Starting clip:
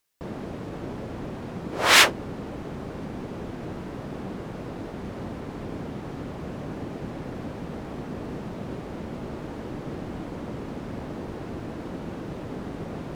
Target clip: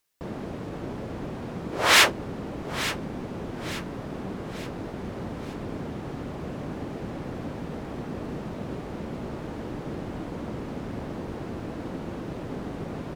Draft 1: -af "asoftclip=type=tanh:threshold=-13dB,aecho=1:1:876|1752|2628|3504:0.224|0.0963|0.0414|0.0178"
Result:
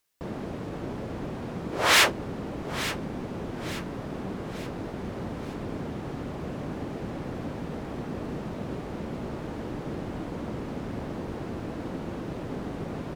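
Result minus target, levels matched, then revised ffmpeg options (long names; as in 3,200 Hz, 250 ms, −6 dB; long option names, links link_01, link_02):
soft clipping: distortion +7 dB
-af "asoftclip=type=tanh:threshold=-7dB,aecho=1:1:876|1752|2628|3504:0.224|0.0963|0.0414|0.0178"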